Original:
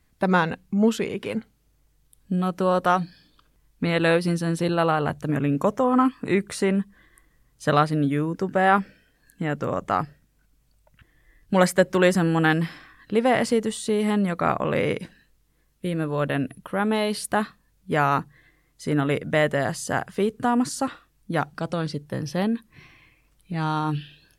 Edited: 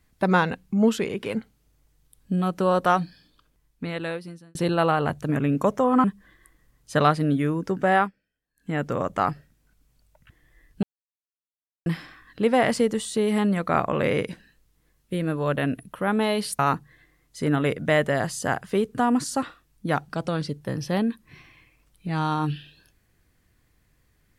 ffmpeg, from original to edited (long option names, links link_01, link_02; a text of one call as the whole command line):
ffmpeg -i in.wav -filter_complex "[0:a]asplit=8[link_01][link_02][link_03][link_04][link_05][link_06][link_07][link_08];[link_01]atrim=end=4.55,asetpts=PTS-STARTPTS,afade=type=out:start_time=2.96:duration=1.59[link_09];[link_02]atrim=start=4.55:end=6.042,asetpts=PTS-STARTPTS,afade=type=in:duration=0.004:curve=hsin[link_10];[link_03]atrim=start=6.758:end=8.83,asetpts=PTS-STARTPTS,afade=type=out:start_time=1.852:duration=0.22:curve=qsin:silence=0.0749894[link_11];[link_04]atrim=start=8.83:end=9.28,asetpts=PTS-STARTPTS,volume=-22.5dB[link_12];[link_05]atrim=start=9.28:end=11.55,asetpts=PTS-STARTPTS,afade=type=in:duration=0.22:curve=qsin:silence=0.0749894,afade=type=out:start_time=2.266:duration=0.004:curve=hsin[link_13];[link_06]atrim=start=11.55:end=12.58,asetpts=PTS-STARTPTS,volume=0[link_14];[link_07]atrim=start=12.58:end=17.312,asetpts=PTS-STARTPTS,afade=type=in:duration=0.004:curve=hsin[link_15];[link_08]atrim=start=18.038[link_16];[link_09][link_10]concat=n=2:v=0:a=1[link_17];[link_11][link_12][link_13][link_14][link_15]concat=n=5:v=0:a=1[link_18];[link_17][link_18]acrossfade=duration=0.004:curve1=hsin:curve2=hsin[link_19];[link_19][link_16]acrossfade=duration=0.004:curve1=hsin:curve2=hsin" out.wav